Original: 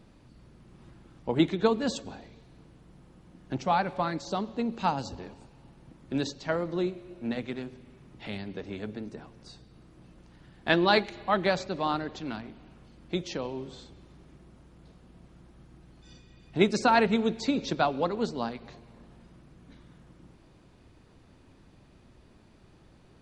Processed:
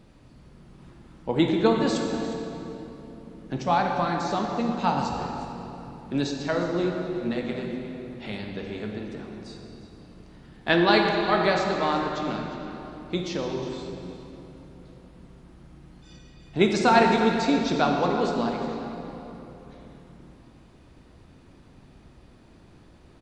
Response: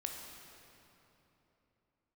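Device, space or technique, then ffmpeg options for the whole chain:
cave: -filter_complex "[0:a]aecho=1:1:358:0.178[a];[1:a]atrim=start_sample=2205[b];[a][b]afir=irnorm=-1:irlink=0,volume=4.5dB"

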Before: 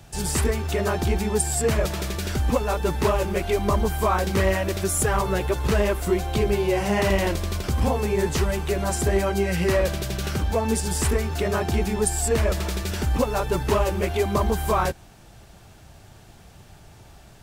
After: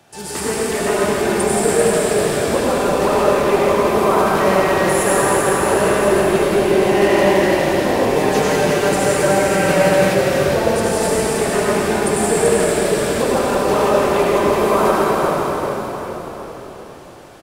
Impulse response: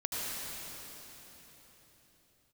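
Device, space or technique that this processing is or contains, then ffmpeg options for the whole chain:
swimming-pool hall: -filter_complex "[0:a]highpass=260[a];[1:a]atrim=start_sample=2205[b];[a][b]afir=irnorm=-1:irlink=0,highshelf=f=3.8k:g=-7,equalizer=f=10k:w=4.3:g=4.5,asettb=1/sr,asplit=3[c][d][e];[c]atrim=end=8.154[f];[d]atrim=start=8.15:end=10.15,asetpts=PTS-STARTPTS,afade=t=in:d=0.004:c=qsin,afade=t=out:st=1.996:d=0.004:c=qsin,aecho=1:1:6.5:0.87,atrim=end_sample=88200[g];[e]atrim=start=10.146[h];[f][g]acrossfade=d=0.004:c1=hsin:c2=qsin[i];[i][h]acrossfade=d=0.004:c1=qsin:c2=hsin,asplit=6[j][k][l][m][n][o];[k]adelay=390,afreqshift=-44,volume=-6.5dB[p];[l]adelay=780,afreqshift=-88,volume=-13.6dB[q];[m]adelay=1170,afreqshift=-132,volume=-20.8dB[r];[n]adelay=1560,afreqshift=-176,volume=-27.9dB[s];[o]adelay=1950,afreqshift=-220,volume=-35dB[t];[j][p][q][r][s][t]amix=inputs=6:normalize=0,volume=3.5dB"

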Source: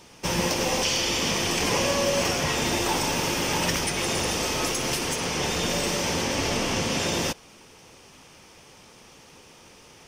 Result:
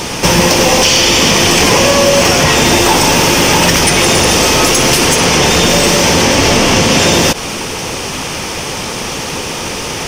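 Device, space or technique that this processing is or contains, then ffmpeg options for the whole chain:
loud club master: -af "acompressor=threshold=-28dB:ratio=2.5,asoftclip=type=hard:threshold=-22.5dB,alimiter=level_in=31.5dB:limit=-1dB:release=50:level=0:latency=1,volume=-1dB"

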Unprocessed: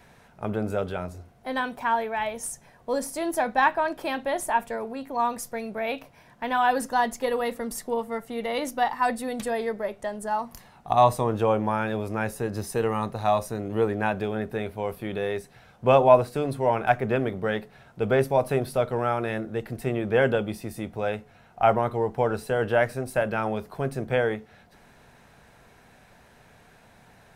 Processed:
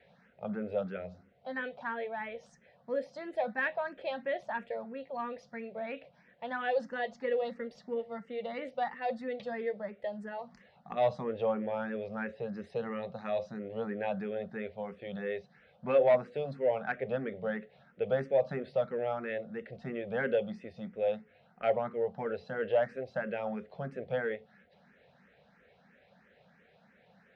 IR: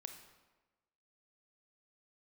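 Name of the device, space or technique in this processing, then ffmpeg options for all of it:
barber-pole phaser into a guitar amplifier: -filter_complex "[0:a]asettb=1/sr,asplit=3[a][b][c];[a]atrim=end=12.204[d];[b]atrim=start=12.2:end=12.64,asetpts=PTS-STARTPTS,afade=t=in:d=0.004:c=qsin,afade=t=out:st=0.436:d=0.004:c=qsin,lowpass=5.2k[e];[c]atrim=start=12.636[f];[d][e]acrossfade=d=0.004:c1=hsin:c2=qsin[g];[g][f]acrossfade=d=0.004:c1=qsin:c2=hsin,asplit=2[h][i];[i]afreqshift=3[j];[h][j]amix=inputs=2:normalize=1,asoftclip=type=tanh:threshold=-12dB,highpass=96,equalizer=f=110:t=q:w=4:g=-9,equalizer=f=190:t=q:w=4:g=8,equalizer=f=320:t=q:w=4:g=-9,equalizer=f=530:t=q:w=4:g=9,equalizer=f=1k:t=q:w=4:g=-8,equalizer=f=1.9k:t=q:w=4:g=4,lowpass=f=4.3k:w=0.5412,lowpass=f=4.3k:w=1.3066,volume=-7dB"

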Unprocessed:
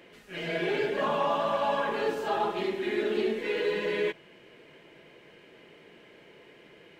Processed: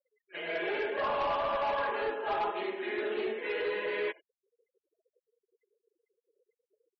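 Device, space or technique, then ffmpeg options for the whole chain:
walkie-talkie: -af "highpass=480,lowpass=2.7k,asoftclip=type=hard:threshold=-27dB,agate=range=-10dB:threshold=-44dB:ratio=16:detection=peak,afftfilt=real='re*gte(hypot(re,im),0.00282)':imag='im*gte(hypot(re,im),0.00282)':win_size=1024:overlap=0.75"

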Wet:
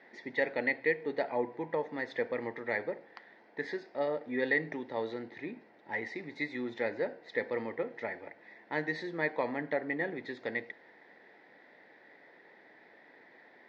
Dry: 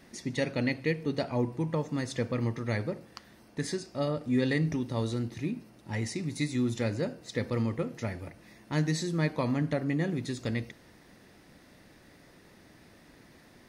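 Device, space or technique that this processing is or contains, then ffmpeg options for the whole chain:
phone earpiece: -af "highpass=440,equalizer=f=450:t=q:w=4:g=4,equalizer=f=840:t=q:w=4:g=5,equalizer=f=1.2k:t=q:w=4:g=-8,equalizer=f=1.9k:t=q:w=4:g=8,equalizer=f=2.8k:t=q:w=4:g=-10,lowpass=f=3.3k:w=0.5412,lowpass=f=3.3k:w=1.3066"

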